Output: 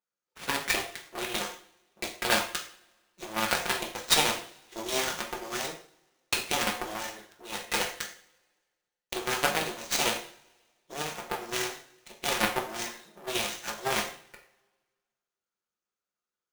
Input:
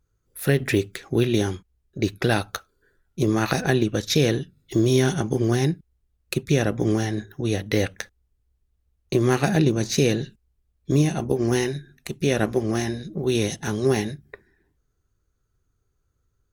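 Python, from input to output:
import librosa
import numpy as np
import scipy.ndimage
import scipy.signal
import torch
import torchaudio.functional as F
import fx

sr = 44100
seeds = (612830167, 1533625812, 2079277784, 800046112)

p1 = fx.lower_of_two(x, sr, delay_ms=5.6)
p2 = scipy.signal.sosfilt(scipy.signal.bessel(2, 680.0, 'highpass', norm='mag', fs=sr, output='sos'), p1)
p3 = fx.cheby_harmonics(p2, sr, harmonics=(3, 6, 7), levels_db=(-31, -28, -19), full_scale_db=-10.5)
p4 = fx.rev_double_slope(p3, sr, seeds[0], early_s=0.45, late_s=1.6, knee_db=-24, drr_db=0.5)
p5 = fx.rider(p4, sr, range_db=10, speed_s=2.0)
p6 = p4 + (p5 * librosa.db_to_amplitude(-1.5))
y = fx.sample_hold(p6, sr, seeds[1], rate_hz=13000.0, jitter_pct=20)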